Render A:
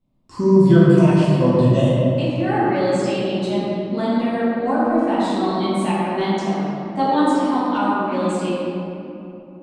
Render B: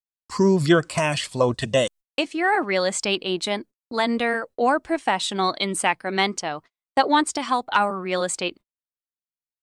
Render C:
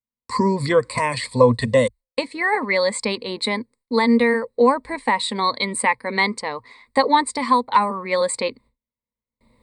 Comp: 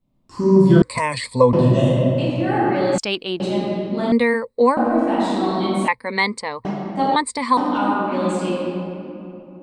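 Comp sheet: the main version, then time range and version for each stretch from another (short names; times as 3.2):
A
0.82–1.53 from C
2.98–3.4 from B
4.12–4.77 from C
5.88–6.65 from C
7.16–7.57 from C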